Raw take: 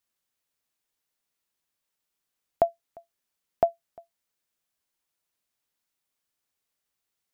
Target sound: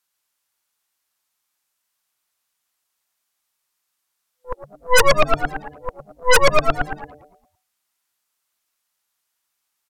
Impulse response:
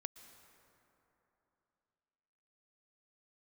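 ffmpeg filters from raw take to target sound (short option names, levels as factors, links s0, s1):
-filter_complex "[0:a]areverse,bandreject=f=630:w=12,asetrate=32667,aresample=44100,highshelf=f=2300:g=10.5,asplit=2[s0][s1];[s1]asplit=6[s2][s3][s4][s5][s6][s7];[s2]adelay=113,afreqshift=56,volume=0.355[s8];[s3]adelay=226,afreqshift=112,volume=0.188[s9];[s4]adelay=339,afreqshift=168,volume=0.1[s10];[s5]adelay=452,afreqshift=224,volume=0.0531[s11];[s6]adelay=565,afreqshift=280,volume=0.0279[s12];[s7]adelay=678,afreqshift=336,volume=0.0148[s13];[s8][s9][s10][s11][s12][s13]amix=inputs=6:normalize=0[s14];[s0][s14]amix=inputs=2:normalize=0,aeval=exprs='0.355*sin(PI/2*5.62*val(0)/0.355)':c=same,equalizer=f=1100:w=0.82:g=8.5,afwtdn=0.02,aeval=exprs='0.891*(cos(1*acos(clip(val(0)/0.891,-1,1)))-cos(1*PI/2))+0.398*(cos(8*acos(clip(val(0)/0.891,-1,1)))-cos(8*PI/2))':c=same,asplit=2[s15][s16];[s16]asplit=5[s17][s18][s19][s20][s21];[s17]adelay=102,afreqshift=-150,volume=0.106[s22];[s18]adelay=204,afreqshift=-300,volume=0.0653[s23];[s19]adelay=306,afreqshift=-450,volume=0.0407[s24];[s20]adelay=408,afreqshift=-600,volume=0.0251[s25];[s21]adelay=510,afreqshift=-750,volume=0.0157[s26];[s22][s23][s24][s25][s26]amix=inputs=5:normalize=0[s27];[s15][s27]amix=inputs=2:normalize=0,volume=0.531"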